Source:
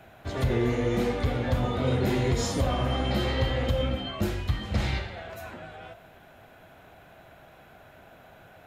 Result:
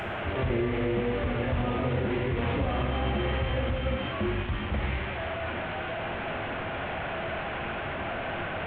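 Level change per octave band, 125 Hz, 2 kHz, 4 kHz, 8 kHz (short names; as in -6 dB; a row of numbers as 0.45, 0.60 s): -2.5 dB, +4.5 dB, -2.5 dB, under -30 dB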